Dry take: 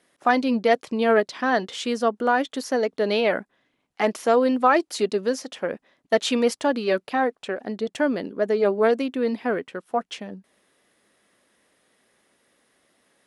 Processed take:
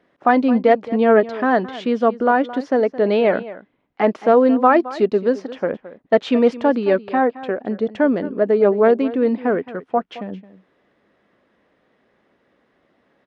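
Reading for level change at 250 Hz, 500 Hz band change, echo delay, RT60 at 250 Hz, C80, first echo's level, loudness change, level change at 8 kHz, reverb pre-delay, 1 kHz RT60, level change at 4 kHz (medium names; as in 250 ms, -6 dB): +6.5 dB, +5.5 dB, 218 ms, no reverb, no reverb, -16.5 dB, +5.5 dB, under -15 dB, no reverb, no reverb, -5.0 dB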